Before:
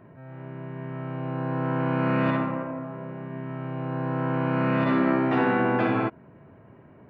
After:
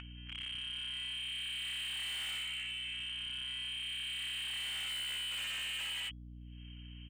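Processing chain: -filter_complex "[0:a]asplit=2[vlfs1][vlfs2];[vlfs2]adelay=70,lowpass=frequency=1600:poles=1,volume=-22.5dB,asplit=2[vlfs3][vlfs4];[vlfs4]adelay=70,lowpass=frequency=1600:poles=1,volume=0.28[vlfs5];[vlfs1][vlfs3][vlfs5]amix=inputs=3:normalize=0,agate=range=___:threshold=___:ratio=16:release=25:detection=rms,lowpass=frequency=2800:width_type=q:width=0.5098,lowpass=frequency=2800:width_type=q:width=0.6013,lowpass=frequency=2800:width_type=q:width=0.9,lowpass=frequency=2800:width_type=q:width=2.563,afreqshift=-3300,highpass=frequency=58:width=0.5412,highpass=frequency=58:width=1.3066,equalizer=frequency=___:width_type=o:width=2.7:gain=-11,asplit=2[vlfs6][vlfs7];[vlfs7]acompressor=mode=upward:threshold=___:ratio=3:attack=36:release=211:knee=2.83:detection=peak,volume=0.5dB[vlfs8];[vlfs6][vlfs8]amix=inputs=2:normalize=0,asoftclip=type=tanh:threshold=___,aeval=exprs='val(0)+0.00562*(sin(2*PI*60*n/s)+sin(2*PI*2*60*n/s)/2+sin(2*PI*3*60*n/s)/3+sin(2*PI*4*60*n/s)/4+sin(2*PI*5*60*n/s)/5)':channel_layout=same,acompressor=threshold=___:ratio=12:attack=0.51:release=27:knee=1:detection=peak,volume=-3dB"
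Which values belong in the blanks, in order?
-57dB, -39dB, 320, -28dB, -23dB, -35dB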